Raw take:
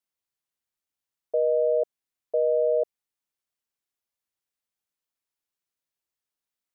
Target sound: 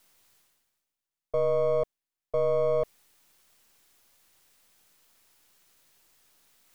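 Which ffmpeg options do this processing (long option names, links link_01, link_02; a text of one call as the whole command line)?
ffmpeg -i in.wav -af "aeval=exprs='if(lt(val(0),0),0.447*val(0),val(0))':channel_layout=same,areverse,acompressor=mode=upward:threshold=-41dB:ratio=2.5,areverse" out.wav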